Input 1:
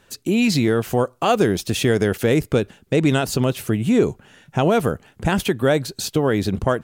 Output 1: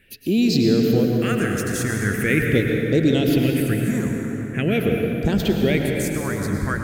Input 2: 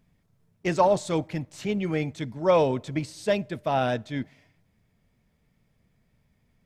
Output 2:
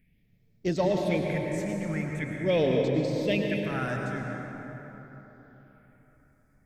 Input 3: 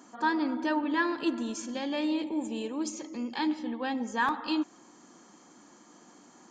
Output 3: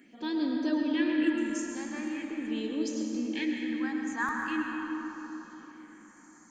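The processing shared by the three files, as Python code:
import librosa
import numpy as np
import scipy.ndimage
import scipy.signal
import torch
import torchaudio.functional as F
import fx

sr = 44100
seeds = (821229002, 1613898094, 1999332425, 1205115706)

y = fx.graphic_eq_10(x, sr, hz=(125, 1000, 2000, 4000), db=(-5, -10, 9, -3))
y = fx.phaser_stages(y, sr, stages=4, low_hz=440.0, high_hz=2100.0, hz=0.43, feedback_pct=40)
y = fx.rev_plate(y, sr, seeds[0], rt60_s=4.0, hf_ratio=0.45, predelay_ms=90, drr_db=0.5)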